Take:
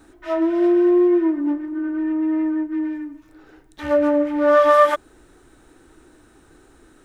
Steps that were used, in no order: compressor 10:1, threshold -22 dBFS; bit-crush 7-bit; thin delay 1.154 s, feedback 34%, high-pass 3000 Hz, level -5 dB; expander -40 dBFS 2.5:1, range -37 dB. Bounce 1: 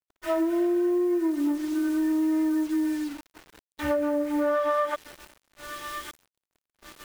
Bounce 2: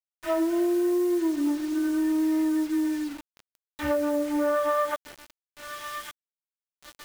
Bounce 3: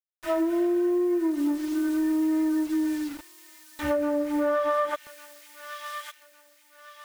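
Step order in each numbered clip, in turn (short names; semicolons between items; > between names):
thin delay > bit-crush > compressor > expander; expander > thin delay > compressor > bit-crush; expander > bit-crush > thin delay > compressor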